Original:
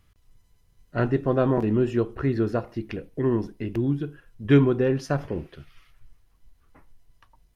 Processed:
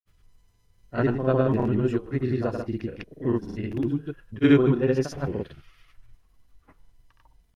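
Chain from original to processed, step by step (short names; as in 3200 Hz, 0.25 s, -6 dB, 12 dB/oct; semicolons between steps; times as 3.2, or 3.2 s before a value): reverse echo 46 ms -7 dB; grains, grains 20/s, pitch spread up and down by 0 st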